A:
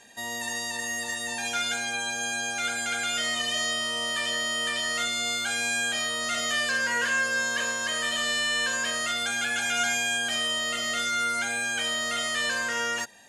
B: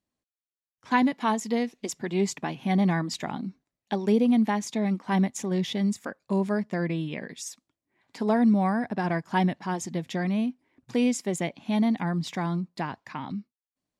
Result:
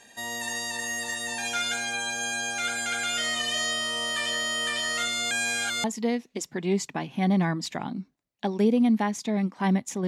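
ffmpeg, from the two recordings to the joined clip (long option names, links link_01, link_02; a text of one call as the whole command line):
ffmpeg -i cue0.wav -i cue1.wav -filter_complex "[0:a]apad=whole_dur=10.07,atrim=end=10.07,asplit=2[link_01][link_02];[link_01]atrim=end=5.312[link_03];[link_02]atrim=start=5.308:end=5.842,asetpts=PTS-STARTPTS,areverse[link_04];[1:a]atrim=start=1.318:end=5.55[link_05];[link_03][link_04]acrossfade=duration=0.004:curve1=hsin:curve2=hsin[link_06];[link_06][link_05]acrossfade=duration=0.004:curve1=hsin:curve2=hsin" out.wav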